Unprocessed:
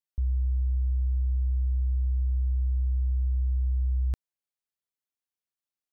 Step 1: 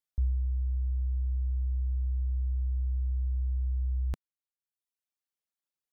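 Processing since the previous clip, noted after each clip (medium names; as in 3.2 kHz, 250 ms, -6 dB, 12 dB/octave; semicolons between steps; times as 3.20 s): reverb removal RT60 0.97 s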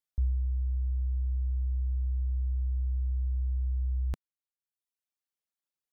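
no audible change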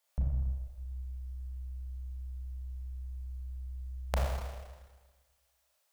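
resonant low shelf 430 Hz -11 dB, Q 3; Schroeder reverb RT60 1.4 s, combs from 27 ms, DRR -4.5 dB; transformer saturation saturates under 170 Hz; trim +11.5 dB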